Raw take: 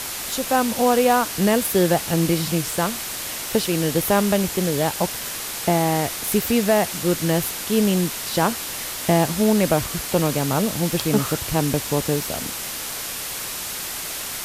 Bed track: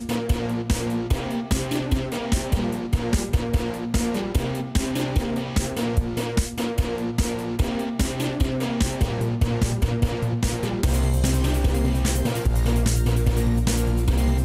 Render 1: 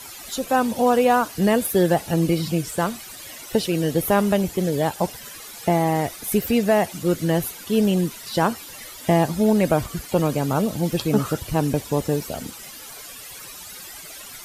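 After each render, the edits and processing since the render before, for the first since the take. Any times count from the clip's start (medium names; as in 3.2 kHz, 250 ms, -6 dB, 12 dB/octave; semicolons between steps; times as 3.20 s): noise reduction 14 dB, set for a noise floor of -30 dBFS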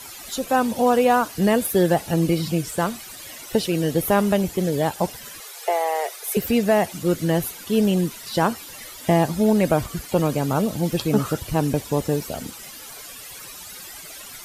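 5.40–6.37 s: steep high-pass 380 Hz 96 dB/octave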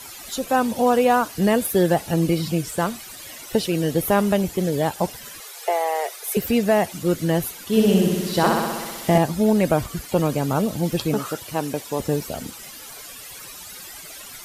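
7.66–9.18 s: flutter echo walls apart 10.9 m, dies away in 1.4 s; 11.14–12.00 s: high-pass 420 Hz 6 dB/octave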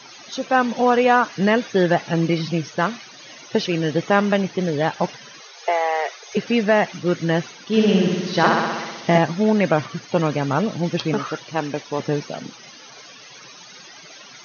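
FFT band-pass 110–6600 Hz; dynamic bell 1.8 kHz, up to +7 dB, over -38 dBFS, Q 0.91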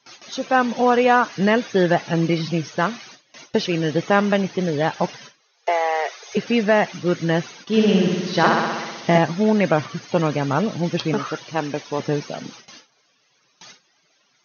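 gate with hold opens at -30 dBFS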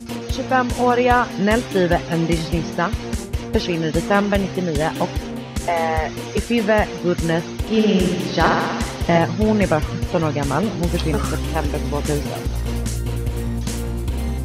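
add bed track -3 dB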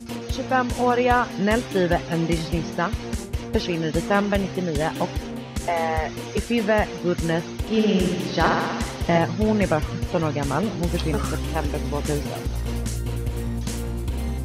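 trim -3.5 dB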